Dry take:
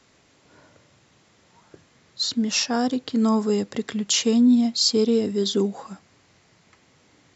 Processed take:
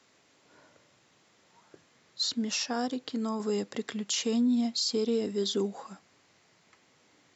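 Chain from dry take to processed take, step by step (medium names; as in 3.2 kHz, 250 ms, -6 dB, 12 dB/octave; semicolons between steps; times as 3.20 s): 2.85–3.40 s: compression, threshold -21 dBFS, peak gain reduction 5.5 dB; high-pass 260 Hz 6 dB/octave; peak limiter -16 dBFS, peak gain reduction 7.5 dB; trim -4.5 dB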